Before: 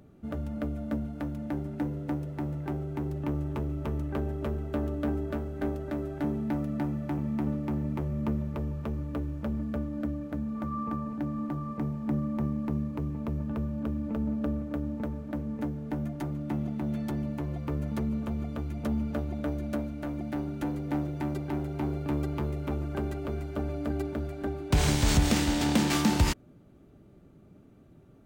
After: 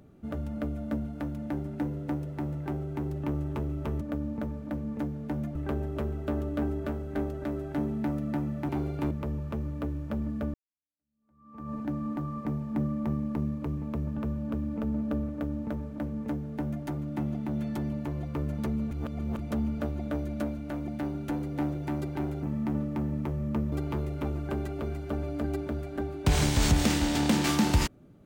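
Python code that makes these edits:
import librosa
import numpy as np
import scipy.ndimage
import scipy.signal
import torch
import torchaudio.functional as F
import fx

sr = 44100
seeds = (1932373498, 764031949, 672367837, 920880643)

y = fx.edit(x, sr, fx.swap(start_s=7.15, length_s=1.29, other_s=21.76, other_length_s=0.42),
    fx.fade_in_span(start_s=9.87, length_s=1.18, curve='exp'),
    fx.duplicate(start_s=14.63, length_s=1.54, to_s=4.01),
    fx.reverse_span(start_s=18.24, length_s=0.48), tone=tone)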